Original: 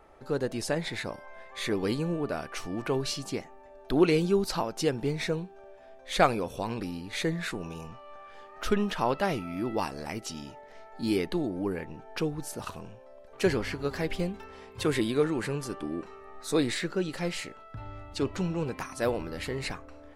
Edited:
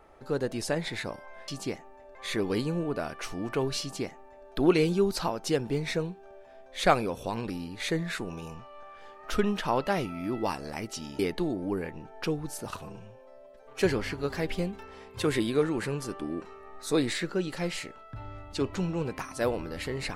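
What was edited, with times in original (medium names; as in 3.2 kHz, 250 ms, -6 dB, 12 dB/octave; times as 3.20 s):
3.14–3.81 s: copy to 1.48 s
10.52–11.13 s: delete
12.76–13.42 s: stretch 1.5×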